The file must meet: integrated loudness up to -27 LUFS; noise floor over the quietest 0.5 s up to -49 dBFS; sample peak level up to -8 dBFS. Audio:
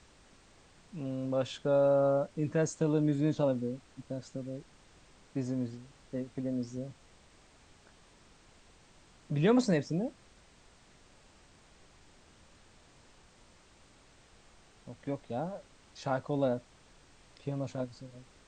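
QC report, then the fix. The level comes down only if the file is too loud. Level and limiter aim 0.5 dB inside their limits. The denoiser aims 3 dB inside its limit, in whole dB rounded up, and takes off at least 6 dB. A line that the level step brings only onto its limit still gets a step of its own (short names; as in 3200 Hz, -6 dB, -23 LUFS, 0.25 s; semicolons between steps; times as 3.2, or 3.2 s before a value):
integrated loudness -33.0 LUFS: OK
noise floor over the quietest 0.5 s -61 dBFS: OK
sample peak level -15.5 dBFS: OK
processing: none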